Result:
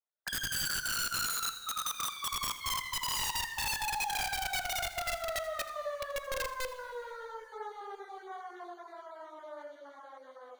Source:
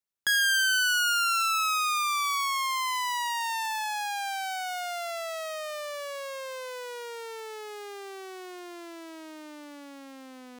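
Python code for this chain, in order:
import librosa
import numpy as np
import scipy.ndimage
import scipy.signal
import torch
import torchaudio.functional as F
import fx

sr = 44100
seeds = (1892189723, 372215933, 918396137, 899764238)

p1 = fx.spec_dropout(x, sr, seeds[0], share_pct=27)
p2 = scipy.signal.sosfilt(scipy.signal.butter(4, 530.0, 'highpass', fs=sr, output='sos'), p1)
p3 = fx.chorus_voices(p2, sr, voices=6, hz=1.3, base_ms=11, depth_ms=3.0, mix_pct=70)
p4 = scipy.signal.lfilter(np.full(17, 1.0 / 17), 1.0, p3)
p5 = (np.mod(10.0 ** (35.5 / 20.0) * p4 + 1.0, 2.0) - 1.0) / 10.0 ** (35.5 / 20.0)
p6 = p5 + fx.echo_single(p5, sr, ms=81, db=-16.0, dry=0)
p7 = fx.rev_plate(p6, sr, seeds[1], rt60_s=2.9, hf_ratio=0.7, predelay_ms=0, drr_db=12.5)
y = p7 * 10.0 ** (6.5 / 20.0)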